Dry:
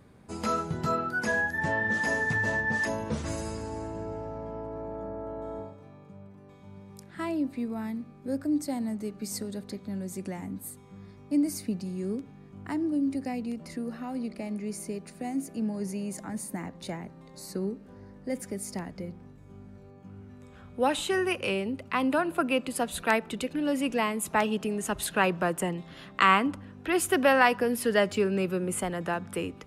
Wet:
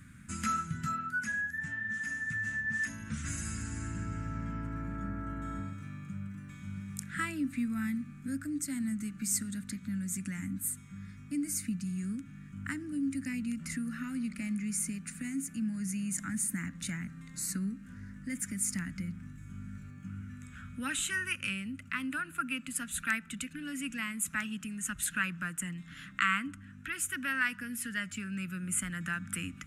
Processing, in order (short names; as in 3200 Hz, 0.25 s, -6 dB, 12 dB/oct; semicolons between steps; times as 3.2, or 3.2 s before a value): in parallel at +2.5 dB: compressor, threshold -37 dBFS, peak gain reduction 19.5 dB; on the sum: EQ curve 180 Hz 0 dB, 280 Hz -4 dB, 400 Hz -26 dB, 930 Hz -20 dB, 1400 Hz +5 dB, 2500 Hz +2 dB, 4600 Hz -6 dB, 7200 Hz +8 dB, 14000 Hz +1 dB; vocal rider 2 s; notch 750 Hz, Q 12; gain -8.5 dB